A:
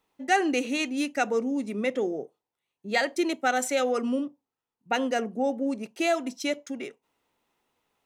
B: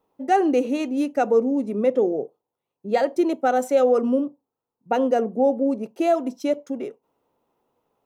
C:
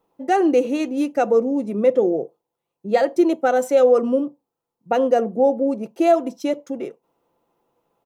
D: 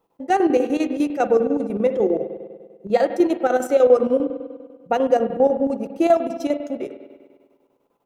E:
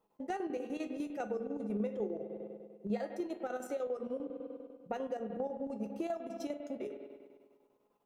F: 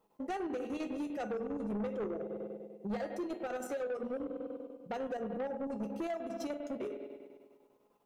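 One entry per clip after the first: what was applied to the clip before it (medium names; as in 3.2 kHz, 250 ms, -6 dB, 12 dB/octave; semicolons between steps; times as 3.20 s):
graphic EQ 125/250/500/1000/2000/4000/8000 Hz +5/+3/+8/+4/-8/-5/-7 dB
comb 5.9 ms, depth 32%; trim +2 dB
spring tank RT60 1.6 s, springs 48 ms, chirp 40 ms, DRR 8.5 dB; square tremolo 10 Hz, depth 60%, duty 70%
compression 4:1, threshold -28 dBFS, peak gain reduction 16 dB; feedback comb 210 Hz, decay 0.23 s, harmonics all, mix 70%
saturation -36 dBFS, distortion -11 dB; trim +4 dB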